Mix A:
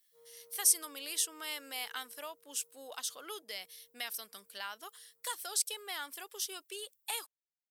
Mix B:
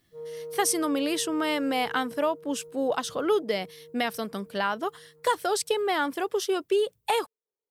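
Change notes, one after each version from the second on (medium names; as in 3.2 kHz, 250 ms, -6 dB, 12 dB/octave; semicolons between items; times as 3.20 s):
master: remove differentiator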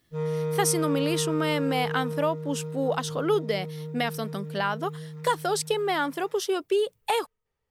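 background: remove ladder band-pass 460 Hz, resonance 40%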